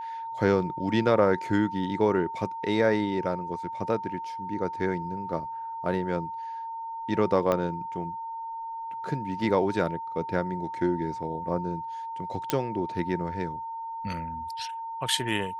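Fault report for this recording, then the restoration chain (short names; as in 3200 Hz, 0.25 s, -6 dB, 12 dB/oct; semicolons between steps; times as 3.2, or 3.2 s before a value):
tone 910 Hz -33 dBFS
7.52 pop -13 dBFS
12.5 pop -8 dBFS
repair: de-click; notch 910 Hz, Q 30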